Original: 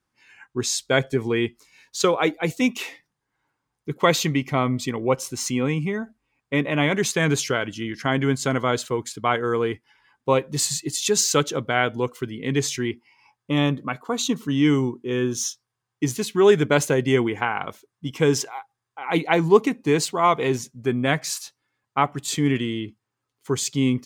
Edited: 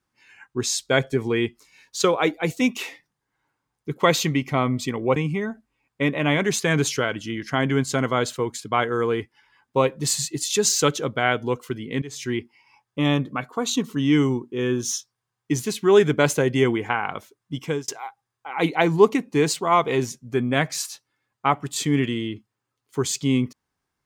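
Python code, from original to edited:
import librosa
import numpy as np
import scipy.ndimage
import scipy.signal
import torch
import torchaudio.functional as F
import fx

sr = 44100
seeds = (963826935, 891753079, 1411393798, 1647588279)

y = fx.edit(x, sr, fx.cut(start_s=5.16, length_s=0.52),
    fx.fade_in_from(start_s=12.54, length_s=0.28, curve='qua', floor_db=-17.0),
    fx.fade_out_span(start_s=18.08, length_s=0.32), tone=tone)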